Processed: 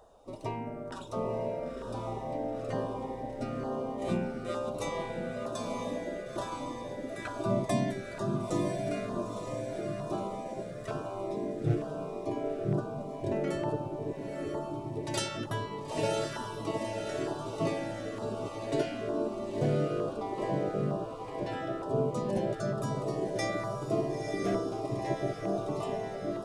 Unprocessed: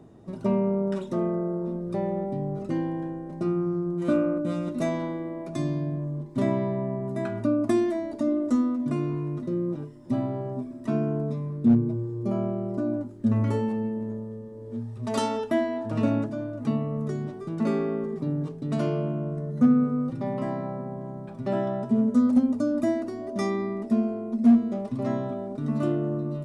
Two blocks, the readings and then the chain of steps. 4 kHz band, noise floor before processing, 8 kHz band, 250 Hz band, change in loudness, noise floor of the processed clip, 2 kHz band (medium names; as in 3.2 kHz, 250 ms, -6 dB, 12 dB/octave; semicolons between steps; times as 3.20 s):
+3.5 dB, -40 dBFS, no reading, -11.5 dB, -7.0 dB, -41 dBFS, 0.0 dB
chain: echo that smears into a reverb 961 ms, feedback 56%, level -4 dB; LFO notch saw down 1.1 Hz 850–2300 Hz; spectral gate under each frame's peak -10 dB weak; trim +2 dB